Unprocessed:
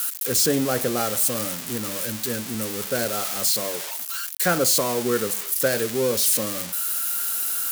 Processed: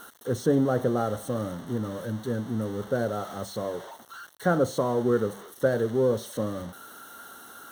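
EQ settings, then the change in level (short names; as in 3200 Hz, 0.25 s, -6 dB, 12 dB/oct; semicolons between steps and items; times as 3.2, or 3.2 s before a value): running mean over 18 samples; bell 90 Hz +5.5 dB 1.1 oct; 0.0 dB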